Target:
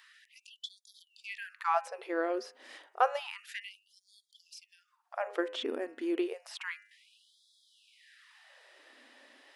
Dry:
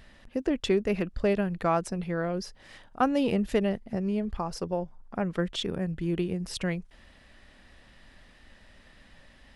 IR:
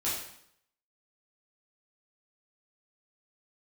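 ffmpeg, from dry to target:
-filter_complex "[0:a]acrossover=split=3100[link_01][link_02];[link_02]acompressor=threshold=-48dB:ratio=4:attack=1:release=60[link_03];[link_01][link_03]amix=inputs=2:normalize=0,bandreject=frequency=102.3:width_type=h:width=4,bandreject=frequency=204.6:width_type=h:width=4,bandreject=frequency=306.9:width_type=h:width=4,bandreject=frequency=409.2:width_type=h:width=4,bandreject=frequency=511.5:width_type=h:width=4,bandreject=frequency=613.8:width_type=h:width=4,bandreject=frequency=716.1:width_type=h:width=4,bandreject=frequency=818.4:width_type=h:width=4,bandreject=frequency=920.7:width_type=h:width=4,bandreject=frequency=1023:width_type=h:width=4,bandreject=frequency=1125.3:width_type=h:width=4,bandreject=frequency=1227.6:width_type=h:width=4,bandreject=frequency=1329.9:width_type=h:width=4,bandreject=frequency=1432.2:width_type=h:width=4,bandreject=frequency=1534.5:width_type=h:width=4,bandreject=frequency=1636.8:width_type=h:width=4,bandreject=frequency=1739.1:width_type=h:width=4,bandreject=frequency=1841.4:width_type=h:width=4,bandreject=frequency=1943.7:width_type=h:width=4,bandreject=frequency=2046:width_type=h:width=4,bandreject=frequency=2148.3:width_type=h:width=4,bandreject=frequency=2250.6:width_type=h:width=4,bandreject=frequency=2352.9:width_type=h:width=4,bandreject=frequency=2455.2:width_type=h:width=4,bandreject=frequency=2557.5:width_type=h:width=4,bandreject=frequency=2659.8:width_type=h:width=4,bandreject=frequency=2762.1:width_type=h:width=4,bandreject=frequency=2864.4:width_type=h:width=4,bandreject=frequency=2966.7:width_type=h:width=4,afftfilt=real='re*gte(b*sr/1024,220*pow(3300/220,0.5+0.5*sin(2*PI*0.3*pts/sr)))':imag='im*gte(b*sr/1024,220*pow(3300/220,0.5+0.5*sin(2*PI*0.3*pts/sr)))':win_size=1024:overlap=0.75"

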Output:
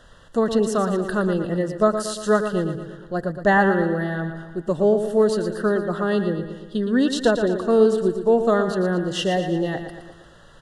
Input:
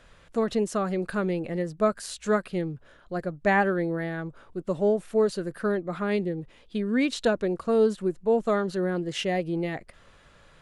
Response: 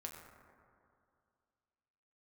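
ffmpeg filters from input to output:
-filter_complex "[0:a]asuperstop=centerf=2300:order=12:qfactor=3.2,aecho=1:1:116|232|348|464|580|696:0.355|0.192|0.103|0.0559|0.0302|0.0163,asplit=2[link_01][link_02];[1:a]atrim=start_sample=2205[link_03];[link_02][link_03]afir=irnorm=-1:irlink=0,volume=-16.5dB[link_04];[link_01][link_04]amix=inputs=2:normalize=0,volume=4.5dB"

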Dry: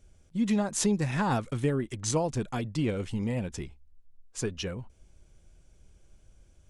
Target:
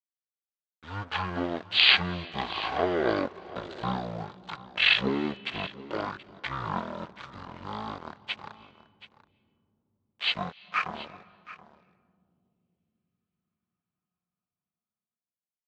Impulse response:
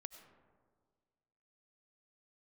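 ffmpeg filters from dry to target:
-filter_complex "[0:a]agate=range=-33dB:threshold=-47dB:ratio=3:detection=peak,aemphasis=mode=production:type=bsi,acrusher=bits=7:mix=0:aa=0.5,aeval=exprs='sgn(val(0))*max(abs(val(0))-0.0119,0)':channel_layout=same,bandpass=frequency=2200:width_type=q:width=0.57:csg=0,aecho=1:1:311:0.141,asplit=2[link_01][link_02];[1:a]atrim=start_sample=2205,asetrate=30870,aresample=44100[link_03];[link_02][link_03]afir=irnorm=-1:irlink=0,volume=-5.5dB[link_04];[link_01][link_04]amix=inputs=2:normalize=0,asetrate=18846,aresample=44100,volume=6.5dB"

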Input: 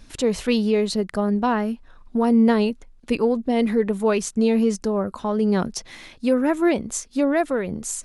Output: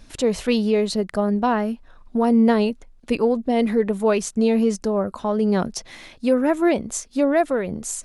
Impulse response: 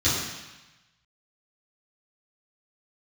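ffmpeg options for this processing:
-af "equalizer=frequency=640:width_type=o:width=0.6:gain=3.5"

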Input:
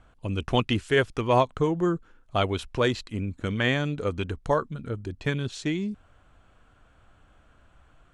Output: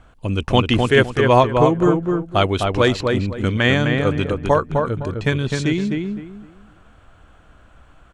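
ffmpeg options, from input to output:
ffmpeg -i in.wav -filter_complex "[0:a]asplit=2[link_01][link_02];[link_02]adelay=256,lowpass=frequency=2100:poles=1,volume=-3.5dB,asplit=2[link_03][link_04];[link_04]adelay=256,lowpass=frequency=2100:poles=1,volume=0.27,asplit=2[link_05][link_06];[link_06]adelay=256,lowpass=frequency=2100:poles=1,volume=0.27,asplit=2[link_07][link_08];[link_08]adelay=256,lowpass=frequency=2100:poles=1,volume=0.27[link_09];[link_01][link_03][link_05][link_07][link_09]amix=inputs=5:normalize=0,volume=7.5dB" out.wav

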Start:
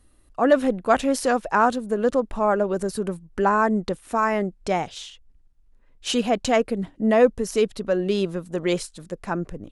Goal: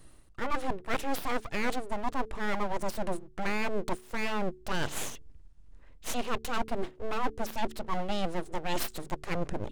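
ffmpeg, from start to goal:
ffmpeg -i in.wav -af "aresample=22050,aresample=44100,areverse,acompressor=threshold=-32dB:ratio=6,areverse,aeval=exprs='abs(val(0))':channel_layout=same,bandreject=frequency=73.72:width_type=h:width=4,bandreject=frequency=147.44:width_type=h:width=4,bandreject=frequency=221.16:width_type=h:width=4,bandreject=frequency=294.88:width_type=h:width=4,bandreject=frequency=368.6:width_type=h:width=4,bandreject=frequency=442.32:width_type=h:width=4,volume=6dB" out.wav

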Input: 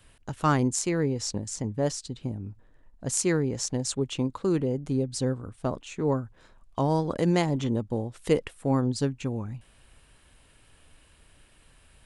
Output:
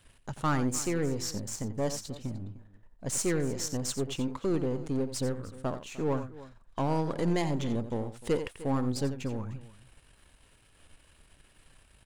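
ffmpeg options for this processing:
ffmpeg -i in.wav -af "aeval=exprs='if(lt(val(0),0),0.447*val(0),val(0))':channel_layout=same,aecho=1:1:88|303:0.251|0.112,asoftclip=type=tanh:threshold=-19dB" out.wav

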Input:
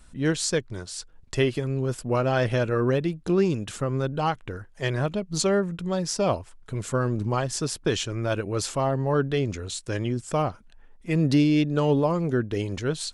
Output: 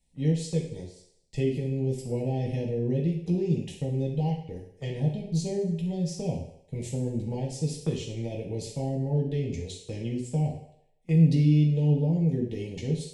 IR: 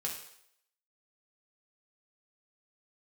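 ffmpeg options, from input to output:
-filter_complex "[0:a]asuperstop=centerf=1300:order=8:qfactor=1.3,acrossover=split=340[link_01][link_02];[link_02]acompressor=threshold=-39dB:ratio=5[link_03];[link_01][link_03]amix=inputs=2:normalize=0,agate=range=-16dB:threshold=-37dB:ratio=16:detection=peak[link_04];[1:a]atrim=start_sample=2205[link_05];[link_04][link_05]afir=irnorm=-1:irlink=0,volume=-1.5dB"

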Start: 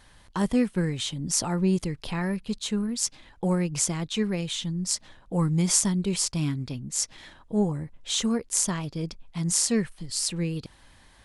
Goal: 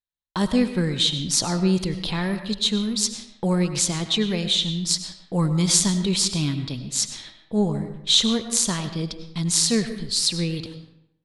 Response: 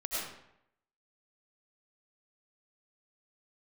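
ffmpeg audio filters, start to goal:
-filter_complex "[0:a]agate=range=-50dB:threshold=-45dB:ratio=16:detection=peak,equalizer=frequency=3900:width_type=o:width=0.56:gain=12.5,asplit=2[link_01][link_02];[1:a]atrim=start_sample=2205,highshelf=frequency=6500:gain=-8.5[link_03];[link_02][link_03]afir=irnorm=-1:irlink=0,volume=-10.5dB[link_04];[link_01][link_04]amix=inputs=2:normalize=0,volume=1dB"

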